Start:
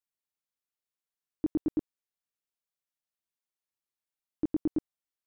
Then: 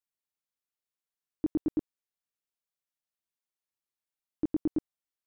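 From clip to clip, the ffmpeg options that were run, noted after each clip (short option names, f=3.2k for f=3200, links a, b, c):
-af anull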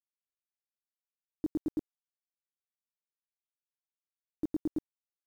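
-af "acrusher=bits=8:mix=0:aa=0.000001,volume=-4dB"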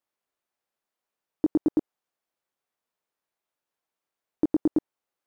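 -af "acompressor=threshold=-32dB:ratio=6,equalizer=f=660:w=0.33:g=12.5,volume=4dB"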